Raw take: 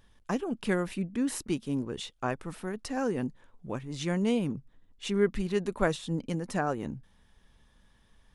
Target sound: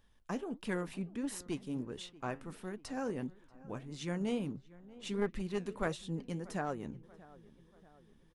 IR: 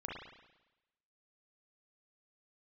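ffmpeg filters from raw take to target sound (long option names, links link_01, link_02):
-filter_complex "[0:a]flanger=delay=3.7:depth=7.4:regen=-76:speed=1.5:shape=sinusoidal,acrossover=split=1300[link_01][link_02];[link_01]aeval=exprs='clip(val(0),-1,0.0282)':channel_layout=same[link_03];[link_03][link_02]amix=inputs=2:normalize=0,asplit=2[link_04][link_05];[link_05]adelay=636,lowpass=frequency=2000:poles=1,volume=-20dB,asplit=2[link_06][link_07];[link_07]adelay=636,lowpass=frequency=2000:poles=1,volume=0.55,asplit=2[link_08][link_09];[link_09]adelay=636,lowpass=frequency=2000:poles=1,volume=0.55,asplit=2[link_10][link_11];[link_11]adelay=636,lowpass=frequency=2000:poles=1,volume=0.55[link_12];[link_04][link_06][link_08][link_10][link_12]amix=inputs=5:normalize=0,volume=-3dB"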